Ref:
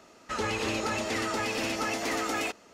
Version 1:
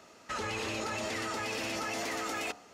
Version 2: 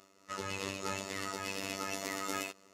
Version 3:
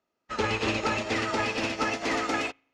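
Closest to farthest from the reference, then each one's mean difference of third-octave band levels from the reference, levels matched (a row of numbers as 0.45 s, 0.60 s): 1, 2, 3; 2.0 dB, 3.5 dB, 6.5 dB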